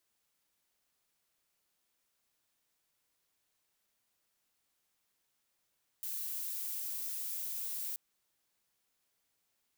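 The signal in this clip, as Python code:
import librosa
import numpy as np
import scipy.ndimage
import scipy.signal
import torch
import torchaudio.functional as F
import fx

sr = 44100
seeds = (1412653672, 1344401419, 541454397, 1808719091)

y = fx.noise_colour(sr, seeds[0], length_s=1.93, colour='violet', level_db=-39.0)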